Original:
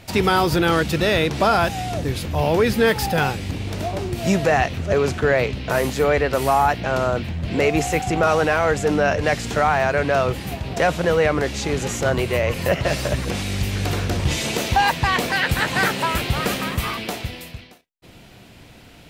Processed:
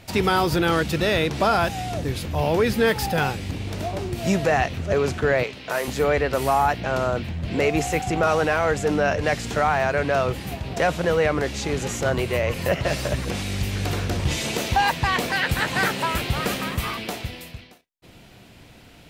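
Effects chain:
0:05.43–0:05.88: high-pass filter 560 Hz 6 dB per octave
level −2.5 dB

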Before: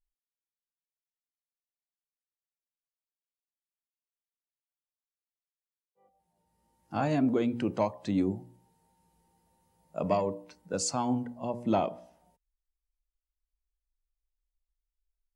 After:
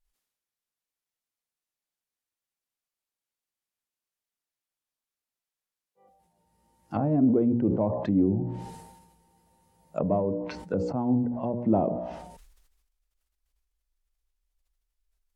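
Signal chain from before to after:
treble cut that deepens with the level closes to 520 Hz, closed at −29.5 dBFS
level that may fall only so fast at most 47 dB per second
level +5 dB

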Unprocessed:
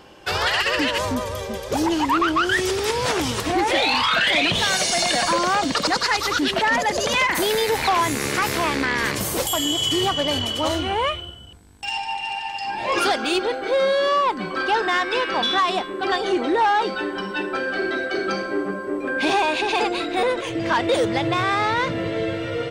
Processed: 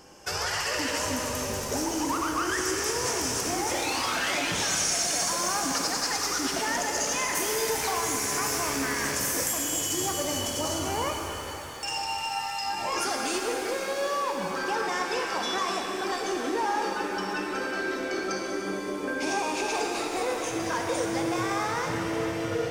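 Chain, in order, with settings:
high shelf with overshoot 4,700 Hz +7 dB, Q 3
downward compressor 3 to 1, threshold −23 dBFS, peak gain reduction 9.5 dB
reverb with rising layers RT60 3.7 s, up +7 semitones, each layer −8 dB, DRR 1 dB
level −6 dB

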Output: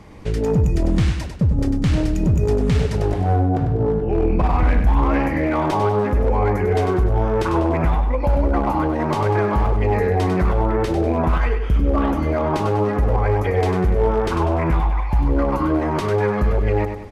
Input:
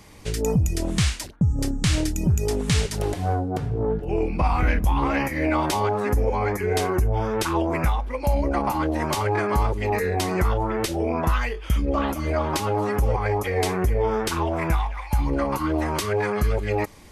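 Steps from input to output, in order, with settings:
low-pass filter 1,100 Hz 6 dB per octave
in parallel at +2 dB: brickwall limiter −21 dBFS, peak gain reduction 9.5 dB
on the sum: hard clipping −12.5 dBFS, distortion −22 dB
repeating echo 98 ms, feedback 43%, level −7.5 dB

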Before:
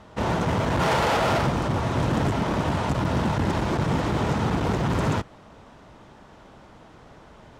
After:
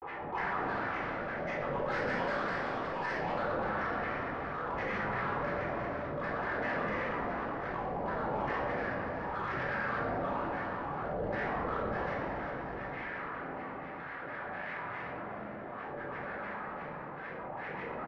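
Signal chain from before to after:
in parallel at −2.5 dB: brickwall limiter −22 dBFS, peak gain reduction 9 dB
on the sum: resonant band-pass 2,400 Hz, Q 6
hard clipping −37 dBFS, distortion −10 dB
shaped tremolo triangle 1.5 Hz, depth 95%
change of speed 0.42×
granular cloud, pitch spread up and down by 12 semitones
high-frequency loss of the air 130 metres
on a send: repeating echo 367 ms, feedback 43%, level −15 dB
on the sum: rectangular room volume 840 cubic metres, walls mixed, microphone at 4 metres
envelope flattener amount 70%

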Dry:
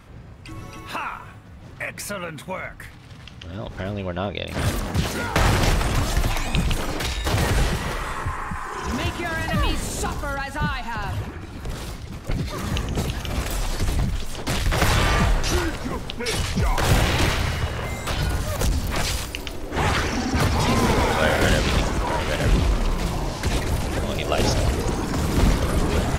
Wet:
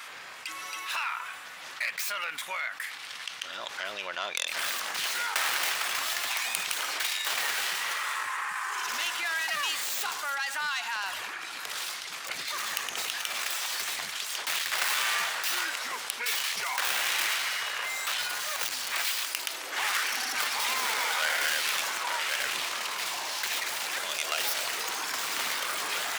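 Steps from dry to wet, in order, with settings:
stylus tracing distortion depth 0.23 ms
high-pass filter 1,500 Hz 12 dB per octave
envelope flattener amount 50%
level −3 dB

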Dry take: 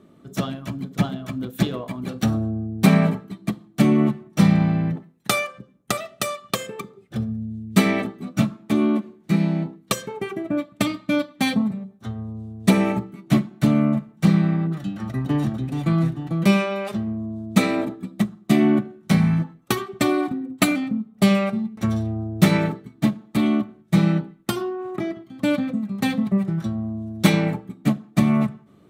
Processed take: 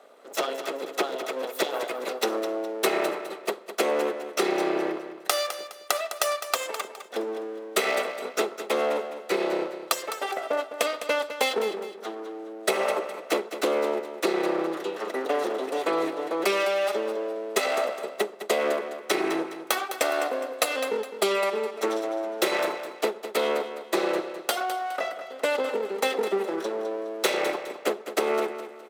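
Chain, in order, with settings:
lower of the sound and its delayed copy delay 1.5 ms
Butterworth high-pass 320 Hz 36 dB per octave
downward compressor, threshold −26 dBFS, peak gain reduction 10 dB
repeating echo 207 ms, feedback 34%, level −11 dB
level +5 dB

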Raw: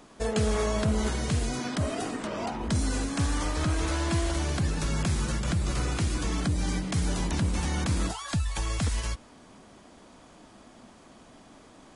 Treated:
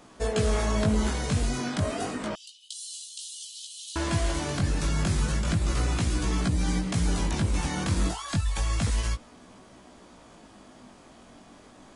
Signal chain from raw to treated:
chorus effect 0.31 Hz, delay 16 ms, depth 5 ms
0:02.35–0:03.96: Chebyshev high-pass with heavy ripple 2,900 Hz, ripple 3 dB
level +4 dB

